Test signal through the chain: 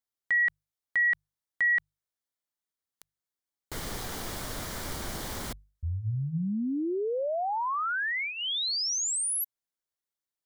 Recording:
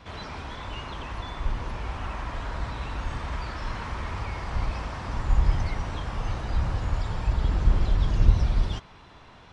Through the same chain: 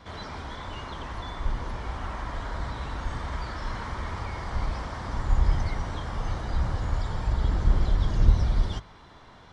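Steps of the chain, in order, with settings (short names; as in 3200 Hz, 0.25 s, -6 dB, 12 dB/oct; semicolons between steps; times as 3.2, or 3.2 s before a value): bell 2600 Hz -10.5 dB 0.2 oct; notches 50/100/150 Hz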